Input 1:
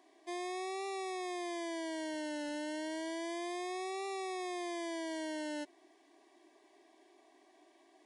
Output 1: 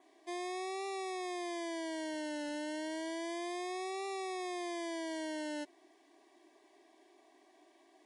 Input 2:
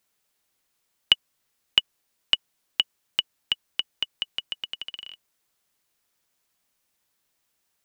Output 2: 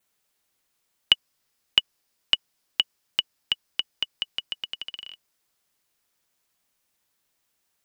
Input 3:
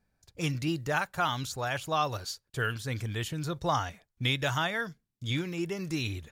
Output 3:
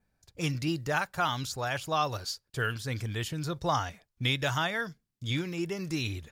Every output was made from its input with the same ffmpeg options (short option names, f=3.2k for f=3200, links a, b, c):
-af "adynamicequalizer=threshold=0.00178:dfrequency=5000:dqfactor=5.5:tfrequency=5000:tqfactor=5.5:attack=5:release=100:ratio=0.375:range=2.5:mode=boostabove:tftype=bell"